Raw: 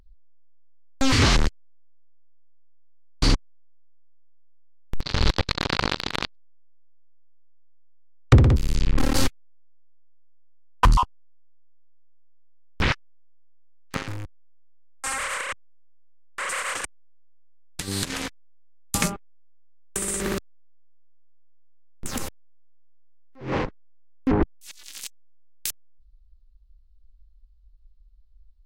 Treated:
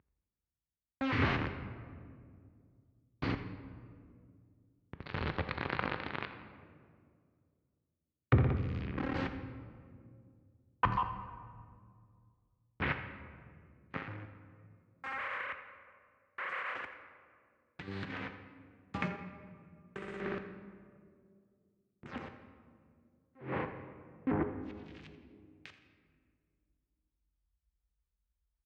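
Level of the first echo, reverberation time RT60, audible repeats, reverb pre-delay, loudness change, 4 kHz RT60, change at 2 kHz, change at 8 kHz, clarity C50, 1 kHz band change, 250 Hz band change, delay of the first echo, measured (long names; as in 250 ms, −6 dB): −15.5 dB, 2.2 s, 1, 3 ms, −12.5 dB, 1.1 s, −8.5 dB, below −40 dB, 8.0 dB, −9.0 dB, −10.0 dB, 84 ms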